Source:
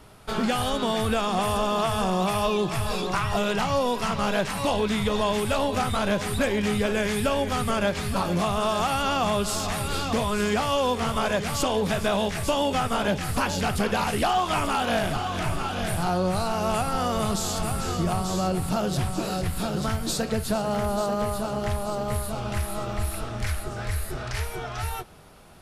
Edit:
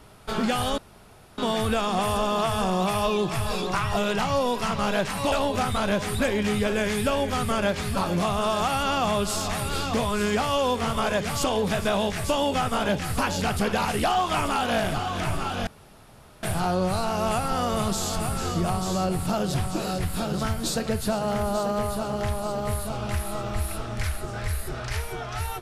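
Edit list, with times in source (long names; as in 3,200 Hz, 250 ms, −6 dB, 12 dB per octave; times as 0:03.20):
0:00.78: splice in room tone 0.60 s
0:04.72–0:05.51: remove
0:15.86: splice in room tone 0.76 s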